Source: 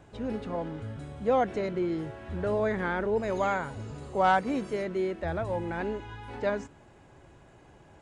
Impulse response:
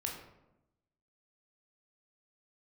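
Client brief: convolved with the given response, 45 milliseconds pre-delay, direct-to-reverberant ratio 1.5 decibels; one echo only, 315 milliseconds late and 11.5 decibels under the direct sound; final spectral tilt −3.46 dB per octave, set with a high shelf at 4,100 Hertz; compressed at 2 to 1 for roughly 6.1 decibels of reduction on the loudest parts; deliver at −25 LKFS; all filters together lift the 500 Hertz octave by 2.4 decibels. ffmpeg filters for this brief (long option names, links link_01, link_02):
-filter_complex "[0:a]equalizer=frequency=500:width_type=o:gain=3,highshelf=frequency=4100:gain=-4.5,acompressor=threshold=-29dB:ratio=2,aecho=1:1:315:0.266,asplit=2[link_01][link_02];[1:a]atrim=start_sample=2205,adelay=45[link_03];[link_02][link_03]afir=irnorm=-1:irlink=0,volume=-2.5dB[link_04];[link_01][link_04]amix=inputs=2:normalize=0,volume=5dB"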